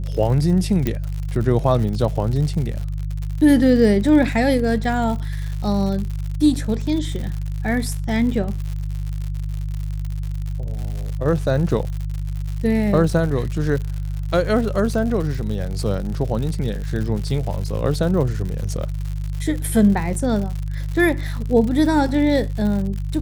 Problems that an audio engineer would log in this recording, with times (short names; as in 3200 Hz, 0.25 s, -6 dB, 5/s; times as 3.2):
crackle 110/s -27 dBFS
hum 50 Hz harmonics 3 -25 dBFS
0.87 pop -8 dBFS